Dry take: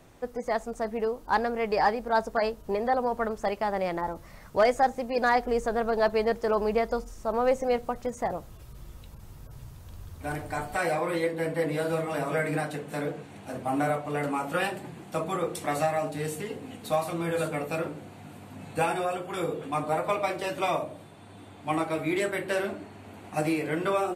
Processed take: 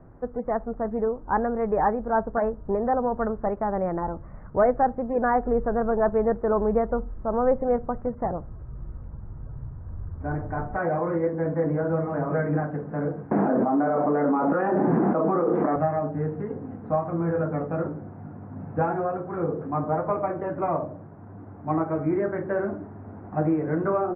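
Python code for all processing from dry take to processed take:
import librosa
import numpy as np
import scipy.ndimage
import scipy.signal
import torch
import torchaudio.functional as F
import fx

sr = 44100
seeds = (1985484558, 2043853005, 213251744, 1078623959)

y = fx.chain(x, sr, fx.highpass(hz=210.0, slope=24),
    fx.high_shelf(hz=2500.0, db=-8.0),
    fx.env_flatten(amount_pct=100), at=(13.31, 15.76))
y = scipy.signal.sosfilt(scipy.signal.butter(6, 1600.0, 'lowpass', fs=sr, output='sos'), y)
y = fx.low_shelf(y, sr, hz=310.0, db=9.0)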